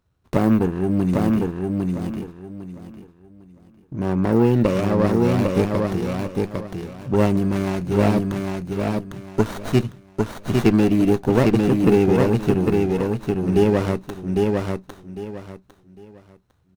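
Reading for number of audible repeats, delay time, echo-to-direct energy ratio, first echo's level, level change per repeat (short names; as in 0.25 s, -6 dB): 3, 0.803 s, -2.5 dB, -3.0 dB, -12.0 dB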